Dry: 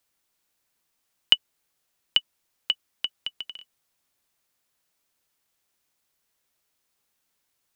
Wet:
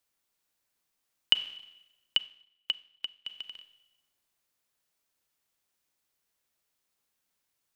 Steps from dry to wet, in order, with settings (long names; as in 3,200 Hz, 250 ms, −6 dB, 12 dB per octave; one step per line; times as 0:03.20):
four-comb reverb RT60 0.96 s, combs from 30 ms, DRR 11 dB
0:02.18–0:03.27: expander for the loud parts 1.5 to 1, over −51 dBFS
level −5 dB